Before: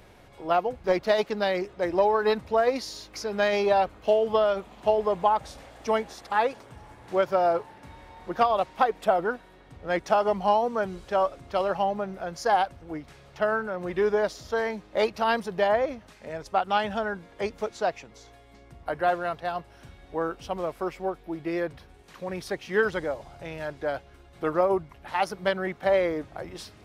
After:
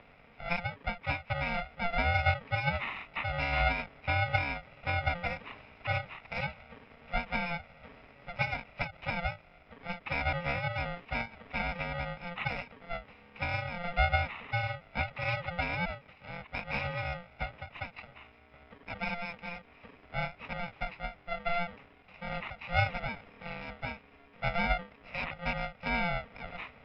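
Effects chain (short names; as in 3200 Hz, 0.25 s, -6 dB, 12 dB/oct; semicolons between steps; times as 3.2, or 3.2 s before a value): FFT order left unsorted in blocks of 64 samples; mistuned SSB -340 Hz 430–3300 Hz; ending taper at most 220 dB/s; gain +7.5 dB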